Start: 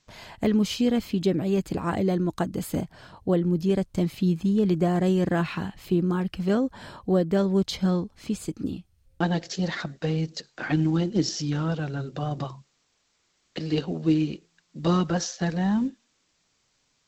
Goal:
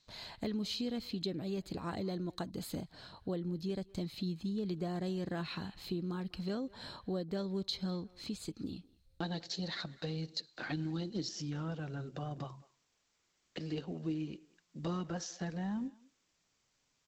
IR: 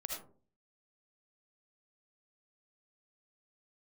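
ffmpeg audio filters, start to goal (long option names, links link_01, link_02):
-filter_complex "[0:a]asetnsamples=nb_out_samples=441:pad=0,asendcmd='11.28 equalizer g -2',equalizer=frequency=4100:width_type=o:width=0.35:gain=14,acompressor=threshold=-32dB:ratio=2,asplit=2[link_01][link_02];[link_02]adelay=200,highpass=300,lowpass=3400,asoftclip=type=hard:threshold=-27.5dB,volume=-21dB[link_03];[link_01][link_03]amix=inputs=2:normalize=0,volume=-7.5dB"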